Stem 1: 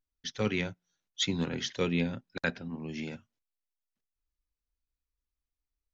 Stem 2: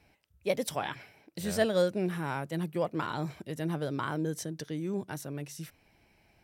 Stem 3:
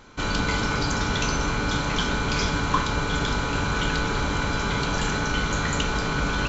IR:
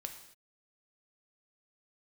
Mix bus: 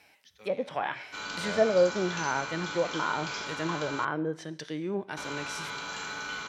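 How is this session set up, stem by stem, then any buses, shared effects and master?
−17.5 dB, 0.00 s, send −13.5 dB, automatic ducking −18 dB, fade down 1.10 s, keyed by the second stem
+2.5 dB, 0.00 s, send −9 dB, treble cut that deepens with the level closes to 800 Hz, closed at −26 dBFS
−13.5 dB, 0.95 s, muted 0:04.05–0:05.17, no send, no processing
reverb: on, pre-delay 3 ms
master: high-pass filter 1,000 Hz 6 dB per octave; harmonic and percussive parts rebalanced harmonic +8 dB

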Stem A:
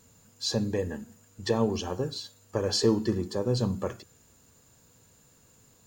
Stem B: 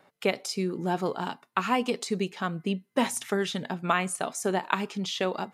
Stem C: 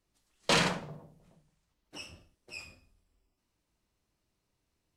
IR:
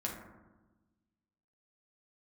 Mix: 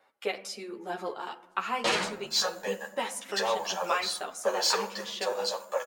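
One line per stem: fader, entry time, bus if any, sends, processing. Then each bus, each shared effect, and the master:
−1.0 dB, 1.90 s, send −9 dB, Chebyshev high-pass filter 530 Hz, order 5; high-shelf EQ 8,500 Hz +5.5 dB; leveller curve on the samples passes 2
−2.0 dB, 0.00 s, send −12.5 dB, parametric band 180 Hz −8 dB 1.3 octaves; hum removal 164.1 Hz, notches 21
+1.0 dB, 1.35 s, send −12.5 dB, no processing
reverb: on, RT60 1.2 s, pre-delay 5 ms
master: bass and treble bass −10 dB, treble −2 dB; string-ensemble chorus

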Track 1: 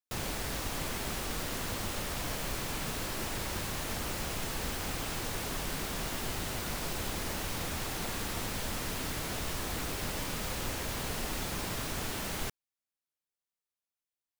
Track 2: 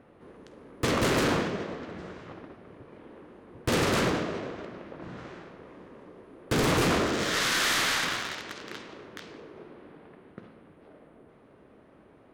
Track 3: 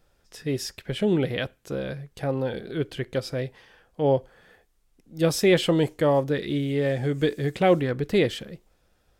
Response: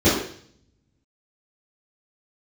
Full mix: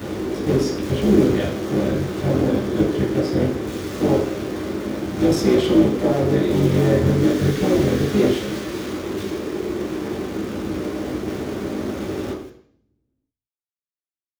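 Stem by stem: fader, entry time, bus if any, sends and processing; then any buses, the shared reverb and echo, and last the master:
−18.5 dB, 0.00 s, send −18.5 dB, no processing
−6.0 dB, 0.00 s, send −17 dB, sign of each sample alone
−2.5 dB, 0.00 s, send −15 dB, sub-harmonics by changed cycles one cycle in 3, muted; brickwall limiter −19 dBFS, peak gain reduction 10.5 dB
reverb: on, RT60 0.55 s, pre-delay 3 ms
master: no processing

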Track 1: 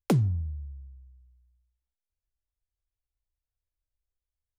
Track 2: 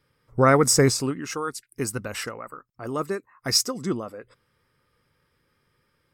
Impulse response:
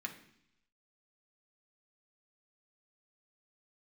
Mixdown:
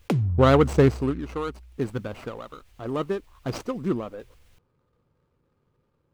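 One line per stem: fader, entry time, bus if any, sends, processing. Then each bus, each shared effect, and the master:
−1.0 dB, 0.00 s, no send, parametric band 2,600 Hz +5.5 dB; envelope flattener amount 50%
+1.5 dB, 0.00 s, no send, running median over 25 samples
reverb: not used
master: high-shelf EQ 6,200 Hz −9 dB

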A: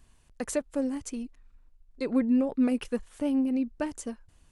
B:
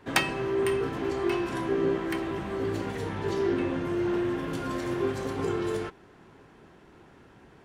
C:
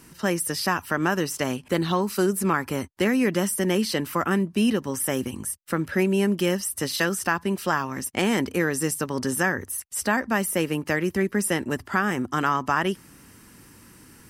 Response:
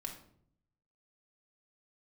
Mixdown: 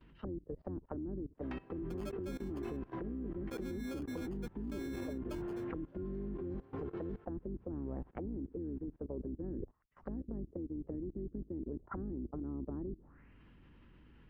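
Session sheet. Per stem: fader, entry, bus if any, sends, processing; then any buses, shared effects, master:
−12.5 dB, 1.50 s, no bus, no send, decimation without filtering 23×
+3.0 dB, 1.35 s, bus A, no send, automatic ducking −9 dB, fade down 1.90 s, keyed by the third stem
−7.0 dB, 0.00 s, bus A, no send, sub-octave generator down 2 octaves, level +3 dB; envelope-controlled low-pass 320–3,700 Hz down, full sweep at −20 dBFS
bus A: 0.0 dB, head-to-tape spacing loss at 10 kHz 38 dB; downward compressor 10 to 1, threshold −30 dBFS, peak gain reduction 14 dB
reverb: not used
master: high-shelf EQ 4,600 Hz −3 dB; output level in coarse steps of 20 dB

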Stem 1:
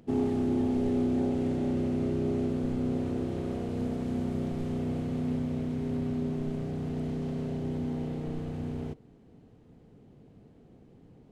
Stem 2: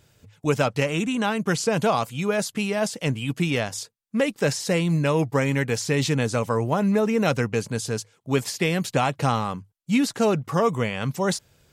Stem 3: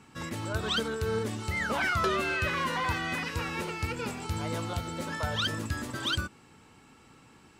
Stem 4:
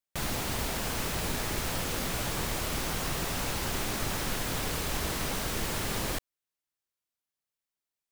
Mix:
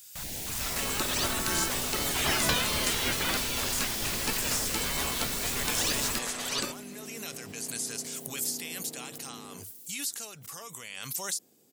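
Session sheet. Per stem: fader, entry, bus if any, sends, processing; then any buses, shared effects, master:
−12.0 dB, 0.70 s, no send, high-pass filter 270 Hz 12 dB per octave; brickwall limiter −30.5 dBFS, peak gain reduction 10 dB
−12.0 dB, 0.00 s, no send, first-order pre-emphasis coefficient 0.97; background raised ahead of every attack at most 20 dB per second
+3.0 dB, 0.45 s, no send, gate on every frequency bin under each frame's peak −15 dB weak; high-shelf EQ 7,800 Hz −9 dB
−9.5 dB, 0.00 s, no send, notch on a step sequencer 4.3 Hz 360–3,000 Hz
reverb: not used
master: high-shelf EQ 4,300 Hz +9 dB; automatic gain control gain up to 4.5 dB

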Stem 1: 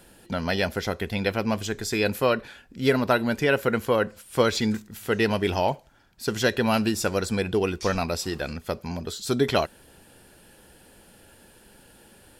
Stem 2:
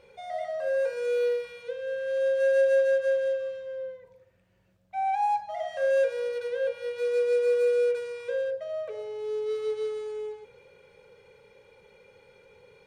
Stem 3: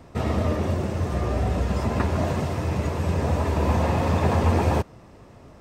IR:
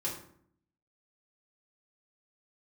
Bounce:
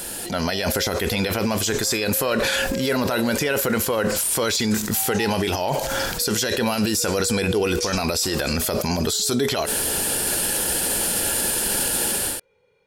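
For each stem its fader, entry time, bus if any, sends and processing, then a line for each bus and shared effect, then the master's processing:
−5.0 dB, 0.00 s, bus A, no send, bass and treble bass −6 dB, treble +10 dB; transient designer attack −2 dB, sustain +5 dB; envelope flattener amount 70%
−8.5 dB, 0.00 s, no bus, no send, no processing
−16.5 dB, 0.80 s, bus A, no send, spectral tilt +4.5 dB per octave; compressor whose output falls as the input rises −34 dBFS
bus A: 0.0 dB, automatic gain control gain up to 12.5 dB; brickwall limiter −13 dBFS, peak gain reduction 11 dB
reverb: not used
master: no processing

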